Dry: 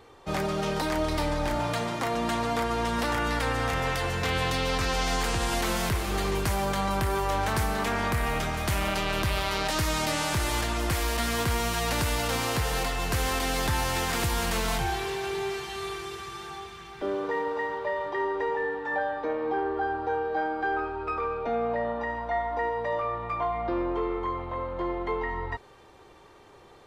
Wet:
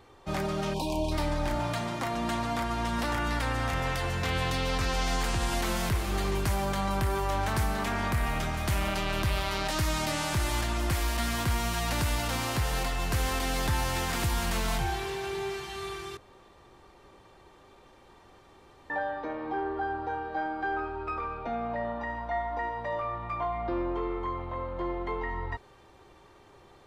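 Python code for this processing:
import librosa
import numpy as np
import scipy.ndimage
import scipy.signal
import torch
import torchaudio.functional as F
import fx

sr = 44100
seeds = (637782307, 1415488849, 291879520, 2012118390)

y = fx.spec_erase(x, sr, start_s=0.74, length_s=0.38, low_hz=1100.0, high_hz=2300.0)
y = fx.edit(y, sr, fx.room_tone_fill(start_s=16.17, length_s=2.73), tone=tone)
y = fx.low_shelf(y, sr, hz=180.0, db=4.0)
y = fx.notch(y, sr, hz=460.0, q=12.0)
y = y * 10.0 ** (-3.0 / 20.0)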